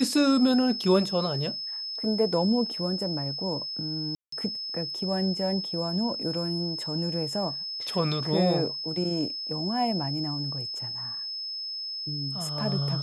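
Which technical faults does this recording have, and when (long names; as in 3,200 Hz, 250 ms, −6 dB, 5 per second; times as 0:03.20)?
whistle 5,200 Hz −32 dBFS
0:04.15–0:04.32: drop-out 174 ms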